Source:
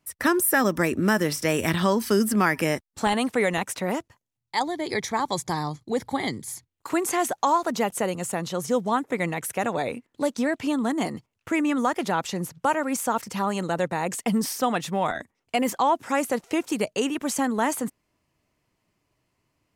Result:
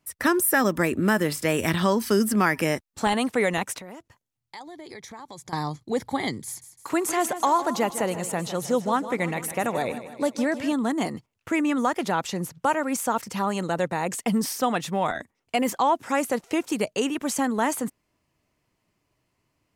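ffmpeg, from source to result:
-filter_complex "[0:a]asettb=1/sr,asplit=3[a][b][c];[a]atrim=end=0.714[d];[b]atrim=start=0.71:end=1.58,asetpts=PTS-STARTPTS,afade=t=in:d=0.004:c=qsin,afade=t=out:st=0.866:d=0.004:c=qsin,bandreject=f=5.7k:w=5.5[e];[c]atrim=start=1.576[f];[d][e]acrossfade=d=0.004:c1=hsin:c2=qsin[g];[g][f]acrossfade=d=0.004:c1=qsin:c2=hsin,asettb=1/sr,asplit=3[h][i][j];[h]atrim=end=3.784[k];[i]atrim=start=3.78:end=5.53,asetpts=PTS-STARTPTS,afade=t=in:d=0.004:c=qsin,afade=t=out:st=1.746:d=0.004:c=qsin,acompressor=threshold=-40dB:ratio=4:attack=3.2:release=140:knee=1:detection=peak[l];[j]atrim=start=5.526[m];[k][l]acrossfade=d=0.004:c1=hsin:c2=qsin[n];[n][m]acrossfade=d=0.004:c1=qsin:c2=hsin,asettb=1/sr,asplit=3[o][p][q];[o]atrim=end=6.464[r];[p]atrim=start=6.46:end=10.73,asetpts=PTS-STARTPTS,afade=t=in:d=0.004:c=qsin,afade=t=out:st=4.266:d=0.004:c=qsin,aecho=1:1:156|312|468|624|780:0.237|0.126|0.0666|0.0353|0.0187,atrim=end_sample=188307[s];[q]atrim=start=10.726[t];[r][s]acrossfade=d=0.004:c1=hsin:c2=qsin[u];[u][t]acrossfade=d=0.004:c1=qsin:c2=hsin"

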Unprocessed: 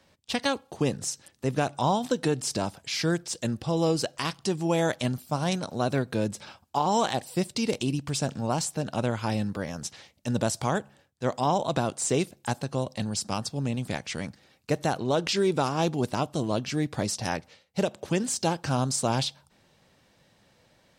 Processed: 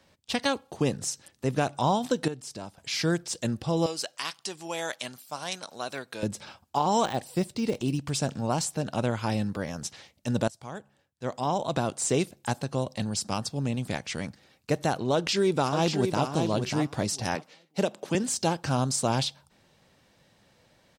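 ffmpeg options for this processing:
-filter_complex "[0:a]asettb=1/sr,asplit=3[a][b][c];[a]atrim=end=3.864[d];[b]atrim=start=3.86:end=6.23,asetpts=PTS-STARTPTS,afade=t=in:d=0.004:c=qsin,afade=t=out:st=2.366:d=0.004:c=qsin,highpass=f=1.4k:p=1[e];[c]atrim=start=6.226[f];[d][e]acrossfade=d=0.004:c1=hsin:c2=qsin[g];[g][f]acrossfade=d=0.004:c1=qsin:c2=hsin,asettb=1/sr,asplit=3[h][i][j];[h]atrim=end=7.054[k];[i]atrim=start=7.05:end=7.99,asetpts=PTS-STARTPTS,afade=t=in:d=0.004:c=qsin,afade=t=out:st=0.936:d=0.004:c=qsin,deesser=0.95[l];[j]atrim=start=7.986[m];[k][l]acrossfade=d=0.004:c1=hsin:c2=qsin[n];[n][m]acrossfade=d=0.004:c1=qsin:c2=hsin,asplit=2[o][p];[p]afade=t=in:st=15.13:d=0.01,afade=t=out:st=16.27:d=0.01,aecho=0:1:590|1180|1770:0.501187|0.0751781|0.0112767[q];[o][q]amix=inputs=2:normalize=0,asettb=1/sr,asplit=3[r][s][t];[r]atrim=end=17.354[u];[s]atrim=start=17.35:end=18.15,asetpts=PTS-STARTPTS,afade=t=in:d=0.004:c=qsin,afade=t=out:st=0.796:d=0.004:c=qsin,highpass=f=160:w=0.5412,highpass=f=160:w=1.3066[v];[t]atrim=start=18.146[w];[u][v]acrossfade=d=0.004:c1=hsin:c2=qsin[x];[x][w]acrossfade=d=0.004:c1=qsin:c2=hsin,asplit=4[y][z][aa][ab];[y]atrim=end=2.282[ac];[z]atrim=start=2.278:end=2.782,asetpts=PTS-STARTPTS,volume=-10.5dB[ad];[aa]atrim=start=2.778:end=10.48,asetpts=PTS-STARTPTS,afade=t=out:st=7.698:d=0.004:c=hsin:silence=0.0891251[ae];[ab]atrim=start=10.48,asetpts=PTS-STARTPTS,afade=t=in:d=1.5:silence=0.0891251[af];[ac][ad]acrossfade=d=0.004:c1=hsin:c2=hsin[ag];[ae][af]concat=n=2:v=0:a=1[ah];[ag][ah]acrossfade=d=0.004:c1=hsin:c2=hsin"

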